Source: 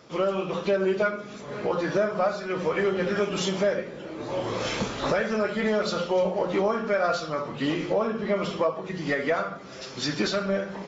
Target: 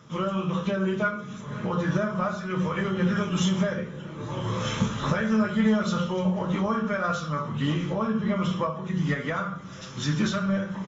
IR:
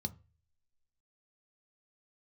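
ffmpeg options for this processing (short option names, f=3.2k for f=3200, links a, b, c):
-filter_complex "[0:a]asplit=2[a][b];[b]adelay=27,volume=-13dB[c];[a][c]amix=inputs=2:normalize=0,asplit=2[d][e];[1:a]atrim=start_sample=2205[f];[e][f]afir=irnorm=-1:irlink=0,volume=-5dB[g];[d][g]amix=inputs=2:normalize=0"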